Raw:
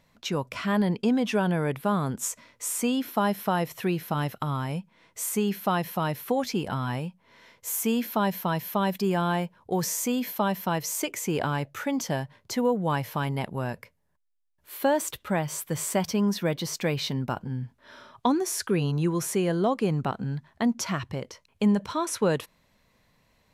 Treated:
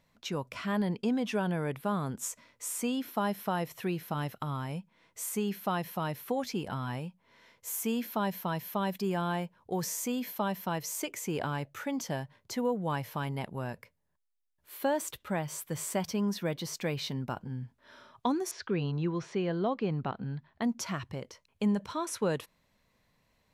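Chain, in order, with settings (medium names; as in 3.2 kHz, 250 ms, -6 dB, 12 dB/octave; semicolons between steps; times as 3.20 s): 18.51–20.62 s: low-pass 4.6 kHz 24 dB/octave; trim -6 dB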